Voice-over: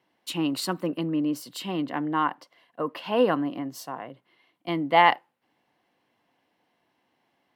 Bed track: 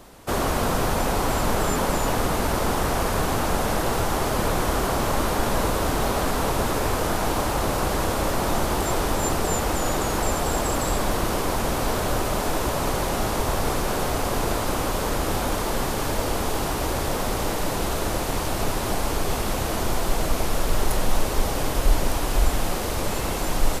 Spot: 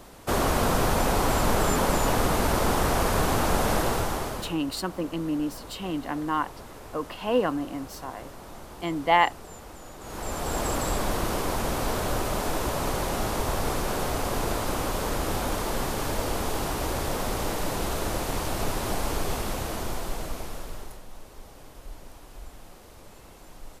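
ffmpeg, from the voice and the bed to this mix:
ffmpeg -i stem1.wav -i stem2.wav -filter_complex "[0:a]adelay=4150,volume=-2dB[link_01];[1:a]volume=16dB,afade=type=out:start_time=3.76:duration=0.81:silence=0.105925,afade=type=in:start_time=9.99:duration=0.66:silence=0.149624,afade=type=out:start_time=19.18:duration=1.84:silence=0.105925[link_02];[link_01][link_02]amix=inputs=2:normalize=0" out.wav

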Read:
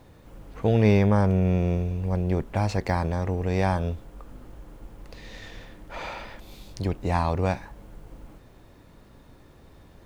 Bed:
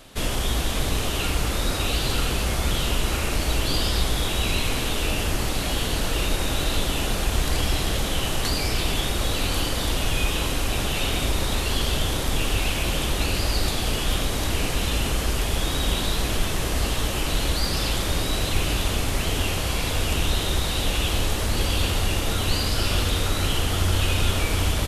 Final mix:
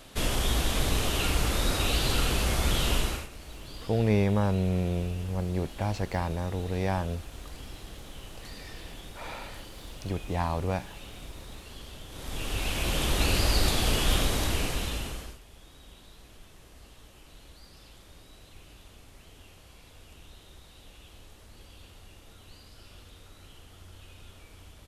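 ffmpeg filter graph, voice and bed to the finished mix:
ffmpeg -i stem1.wav -i stem2.wav -filter_complex "[0:a]adelay=3250,volume=-5dB[link_01];[1:a]volume=17.5dB,afade=type=out:start_time=2.97:duration=0.31:silence=0.11885,afade=type=in:start_time=12.09:duration=1.21:silence=0.1,afade=type=out:start_time=14.19:duration=1.2:silence=0.0446684[link_02];[link_01][link_02]amix=inputs=2:normalize=0" out.wav

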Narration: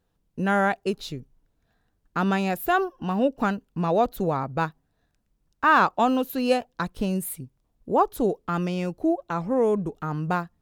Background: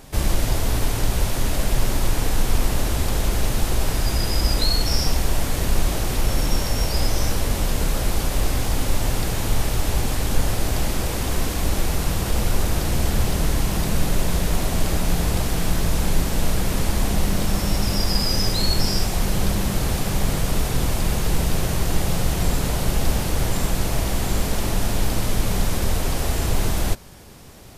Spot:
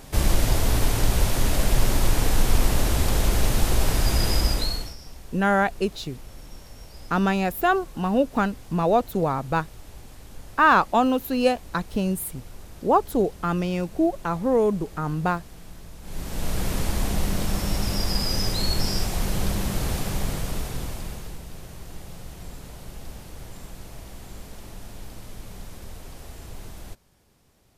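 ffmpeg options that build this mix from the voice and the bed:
ffmpeg -i stem1.wav -i stem2.wav -filter_complex "[0:a]adelay=4950,volume=1.5dB[link_01];[1:a]volume=18dB,afade=type=out:start_time=4.31:duration=0.64:silence=0.0794328,afade=type=in:start_time=16.02:duration=0.62:silence=0.125893,afade=type=out:start_time=19.95:duration=1.45:silence=0.188365[link_02];[link_01][link_02]amix=inputs=2:normalize=0" out.wav

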